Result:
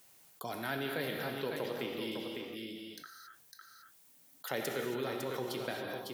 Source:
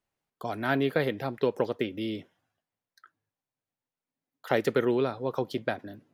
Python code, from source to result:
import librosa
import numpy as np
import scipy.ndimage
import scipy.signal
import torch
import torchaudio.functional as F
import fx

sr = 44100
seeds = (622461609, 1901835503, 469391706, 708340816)

y = scipy.signal.sosfilt(scipy.signal.butter(2, 97.0, 'highpass', fs=sr, output='sos'), x)
y = F.preemphasis(torch.from_numpy(y), 0.8).numpy()
y = y + 10.0 ** (-8.5 / 20.0) * np.pad(y, (int(554 * sr / 1000.0), 0))[:len(y)]
y = fx.rev_gated(y, sr, seeds[0], gate_ms=300, shape='flat', drr_db=3.0)
y = fx.env_flatten(y, sr, amount_pct=50)